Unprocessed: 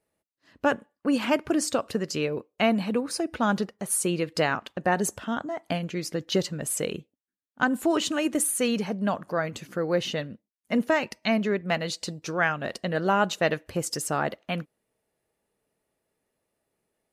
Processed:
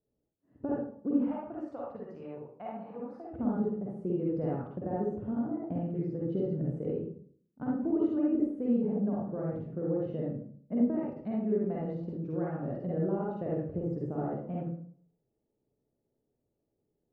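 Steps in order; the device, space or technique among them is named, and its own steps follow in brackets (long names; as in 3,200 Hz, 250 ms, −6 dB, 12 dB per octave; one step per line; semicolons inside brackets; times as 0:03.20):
0:01.22–0:03.30: low shelf with overshoot 540 Hz −14 dB, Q 1.5
television next door (downward compressor 4 to 1, threshold −24 dBFS, peak gain reduction 6.5 dB; low-pass filter 370 Hz 12 dB per octave; convolution reverb RT60 0.55 s, pre-delay 44 ms, DRR −5.5 dB)
level −3 dB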